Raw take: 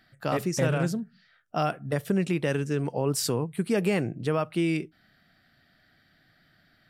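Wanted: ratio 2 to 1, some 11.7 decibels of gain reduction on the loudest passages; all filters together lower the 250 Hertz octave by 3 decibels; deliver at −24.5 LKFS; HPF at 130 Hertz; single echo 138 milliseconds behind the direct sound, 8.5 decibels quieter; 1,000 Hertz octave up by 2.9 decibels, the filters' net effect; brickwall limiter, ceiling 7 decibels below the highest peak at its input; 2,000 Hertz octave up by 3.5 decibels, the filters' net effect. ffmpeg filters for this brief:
ffmpeg -i in.wav -af "highpass=130,equalizer=frequency=250:width_type=o:gain=-4,equalizer=frequency=1000:width_type=o:gain=3.5,equalizer=frequency=2000:width_type=o:gain=3.5,acompressor=threshold=-43dB:ratio=2,alimiter=level_in=4.5dB:limit=-24dB:level=0:latency=1,volume=-4.5dB,aecho=1:1:138:0.376,volume=15.5dB" out.wav

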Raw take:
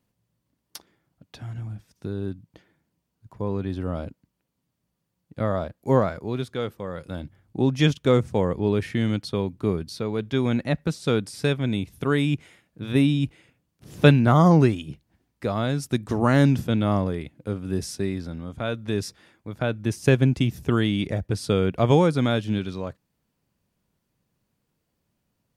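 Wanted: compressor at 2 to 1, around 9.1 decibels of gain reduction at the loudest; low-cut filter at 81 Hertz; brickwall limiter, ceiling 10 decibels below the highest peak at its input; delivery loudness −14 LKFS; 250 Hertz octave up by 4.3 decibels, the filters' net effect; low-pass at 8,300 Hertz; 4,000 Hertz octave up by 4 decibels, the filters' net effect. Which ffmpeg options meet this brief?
ffmpeg -i in.wav -af "highpass=81,lowpass=8300,equalizer=frequency=250:width_type=o:gain=5.5,equalizer=frequency=4000:width_type=o:gain=5,acompressor=threshold=-23dB:ratio=2,volume=15dB,alimiter=limit=-1.5dB:level=0:latency=1" out.wav

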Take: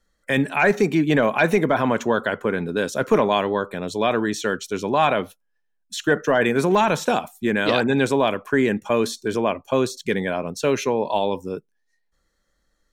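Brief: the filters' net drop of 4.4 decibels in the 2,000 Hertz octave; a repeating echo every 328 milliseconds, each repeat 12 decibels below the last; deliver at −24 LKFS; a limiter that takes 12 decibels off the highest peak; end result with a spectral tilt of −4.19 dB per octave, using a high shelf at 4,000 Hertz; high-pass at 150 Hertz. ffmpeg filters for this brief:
ffmpeg -i in.wav -af "highpass=150,equalizer=frequency=2000:width_type=o:gain=-7,highshelf=frequency=4000:gain=4,alimiter=limit=-18.5dB:level=0:latency=1,aecho=1:1:328|656|984:0.251|0.0628|0.0157,volume=4dB" out.wav

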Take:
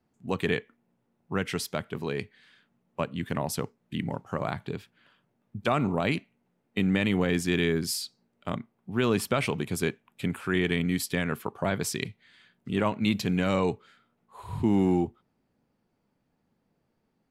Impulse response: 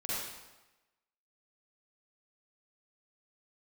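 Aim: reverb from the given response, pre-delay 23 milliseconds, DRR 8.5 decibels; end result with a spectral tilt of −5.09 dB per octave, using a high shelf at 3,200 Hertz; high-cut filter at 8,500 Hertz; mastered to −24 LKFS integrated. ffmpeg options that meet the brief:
-filter_complex "[0:a]lowpass=8500,highshelf=frequency=3200:gain=4,asplit=2[link_01][link_02];[1:a]atrim=start_sample=2205,adelay=23[link_03];[link_02][link_03]afir=irnorm=-1:irlink=0,volume=-13dB[link_04];[link_01][link_04]amix=inputs=2:normalize=0,volume=4dB"

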